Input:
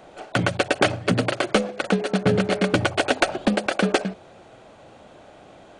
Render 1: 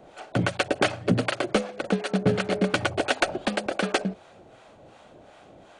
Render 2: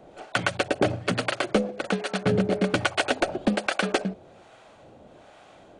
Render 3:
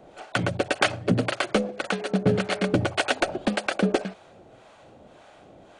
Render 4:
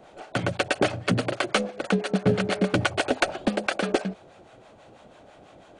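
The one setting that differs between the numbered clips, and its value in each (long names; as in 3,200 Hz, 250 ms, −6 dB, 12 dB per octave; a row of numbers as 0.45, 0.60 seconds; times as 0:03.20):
two-band tremolo in antiphase, speed: 2.7, 1.2, 1.8, 6.1 Hertz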